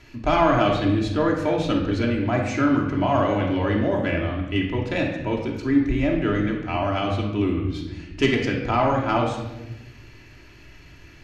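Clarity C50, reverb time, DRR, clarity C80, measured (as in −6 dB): 4.0 dB, 1.0 s, −1.5 dB, 7.0 dB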